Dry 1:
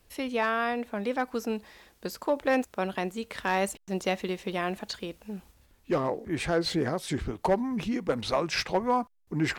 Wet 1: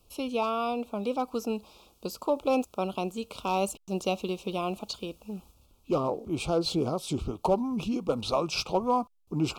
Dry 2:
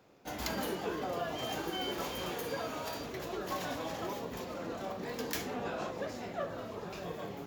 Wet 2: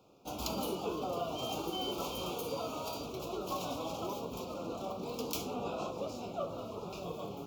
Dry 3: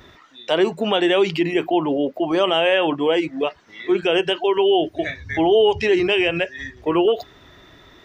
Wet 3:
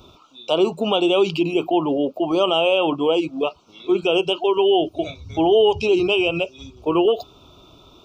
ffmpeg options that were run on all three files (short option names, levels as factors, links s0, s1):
-af "asuperstop=centerf=1800:order=8:qfactor=1.7"